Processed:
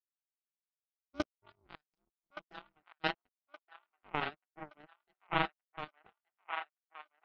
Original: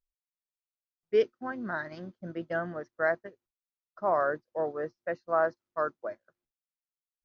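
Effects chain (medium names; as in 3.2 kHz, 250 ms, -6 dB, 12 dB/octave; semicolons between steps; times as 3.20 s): power-law waveshaper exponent 3; trance gate ".xxxxxx..xxx" 163 bpm -24 dB; ring modulator 150 Hz; peaking EQ 510 Hz -10.5 dB 0.24 oct; band-stop 1.7 kHz, Q 11; feedback echo behind a band-pass 1171 ms, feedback 41%, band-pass 1.5 kHz, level -6 dB; trim +6.5 dB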